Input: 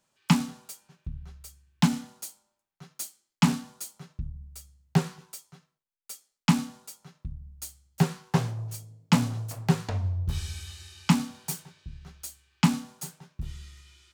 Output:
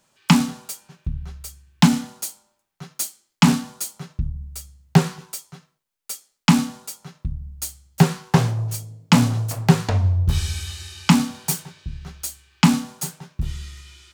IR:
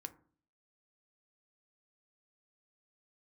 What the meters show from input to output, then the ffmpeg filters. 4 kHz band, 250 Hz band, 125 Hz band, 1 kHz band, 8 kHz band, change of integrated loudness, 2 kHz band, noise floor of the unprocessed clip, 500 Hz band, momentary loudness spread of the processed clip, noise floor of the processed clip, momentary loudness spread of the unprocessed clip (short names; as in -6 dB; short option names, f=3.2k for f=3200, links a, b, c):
+9.0 dB, +8.0 dB, +8.0 dB, +8.0 dB, +9.5 dB, +7.5 dB, +8.5 dB, under -85 dBFS, +8.5 dB, 17 LU, -76 dBFS, 19 LU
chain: -af "alimiter=level_in=11dB:limit=-1dB:release=50:level=0:latency=1,volume=-1dB"